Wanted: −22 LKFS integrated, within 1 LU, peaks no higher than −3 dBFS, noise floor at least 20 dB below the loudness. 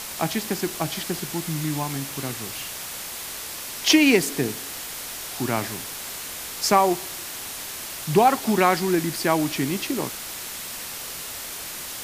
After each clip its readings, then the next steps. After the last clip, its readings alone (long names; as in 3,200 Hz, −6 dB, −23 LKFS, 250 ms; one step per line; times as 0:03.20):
background noise floor −35 dBFS; target noise floor −45 dBFS; integrated loudness −24.5 LKFS; sample peak −2.5 dBFS; target loudness −22.0 LKFS
→ broadband denoise 10 dB, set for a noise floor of −35 dBFS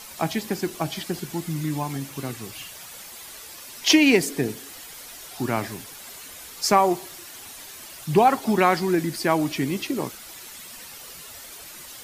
background noise floor −42 dBFS; target noise floor −44 dBFS
→ broadband denoise 6 dB, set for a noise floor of −42 dBFS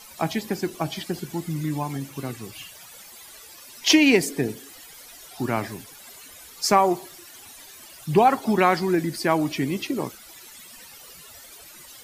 background noise floor −46 dBFS; integrated loudness −23.5 LKFS; sample peak −3.0 dBFS; target loudness −22.0 LKFS
→ level +1.5 dB
brickwall limiter −3 dBFS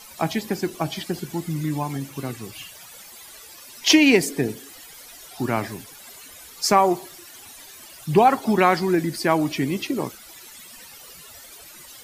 integrated loudness −22.0 LKFS; sample peak −3.0 dBFS; background noise floor −44 dBFS